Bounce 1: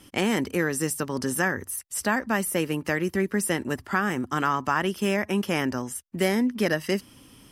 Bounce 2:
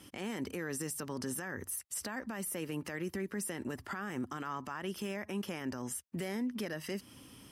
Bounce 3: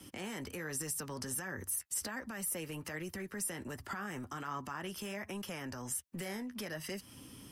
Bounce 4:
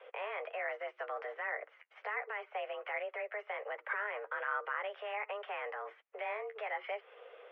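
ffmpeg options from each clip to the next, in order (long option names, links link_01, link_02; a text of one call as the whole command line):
ffmpeg -i in.wav -af "acompressor=threshold=-27dB:ratio=6,highpass=53,alimiter=level_in=2dB:limit=-24dB:level=0:latency=1:release=47,volume=-2dB,volume=-3dB" out.wav
ffmpeg -i in.wav -filter_complex "[0:a]acrossover=split=150|470|4800[link_01][link_02][link_03][link_04];[link_01]aeval=exprs='clip(val(0),-1,0.00266)':channel_layout=same[link_05];[link_02]acompressor=threshold=-51dB:ratio=6[link_06];[link_03]flanger=delay=5.1:depth=7.6:regen=-31:speed=1.3:shape=sinusoidal[link_07];[link_05][link_06][link_07][link_04]amix=inputs=4:normalize=0,volume=3dB" out.wav
ffmpeg -i in.wav -af "highpass=frequency=290:width_type=q:width=0.5412,highpass=frequency=290:width_type=q:width=1.307,lowpass=frequency=2400:width_type=q:width=0.5176,lowpass=frequency=2400:width_type=q:width=0.7071,lowpass=frequency=2400:width_type=q:width=1.932,afreqshift=210,volume=5dB" out.wav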